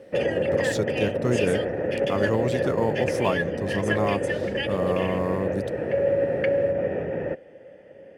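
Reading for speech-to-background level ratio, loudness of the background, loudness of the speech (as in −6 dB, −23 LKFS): −2.5 dB, −26.0 LKFS, −28.5 LKFS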